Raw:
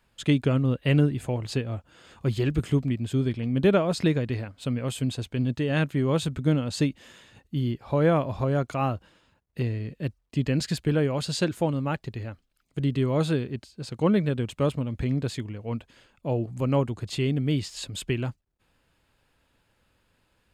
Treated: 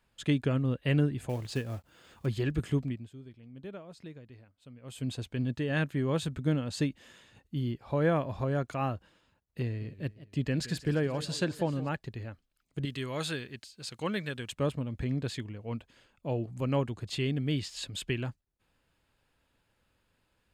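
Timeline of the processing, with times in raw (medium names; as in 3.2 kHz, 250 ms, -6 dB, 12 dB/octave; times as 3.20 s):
1.29–2.26 s: companded quantiser 6-bit
2.82–5.11 s: dip -17.5 dB, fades 0.29 s
9.64–11.89 s: modulated delay 173 ms, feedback 58%, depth 155 cents, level -16.5 dB
12.85–14.52 s: tilt shelf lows -8 dB, about 1.1 kHz
15.10–18.24 s: dynamic bell 3.2 kHz, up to +4 dB, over -46 dBFS, Q 0.82
whole clip: dynamic bell 1.7 kHz, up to +6 dB, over -56 dBFS, Q 7.7; trim -5.5 dB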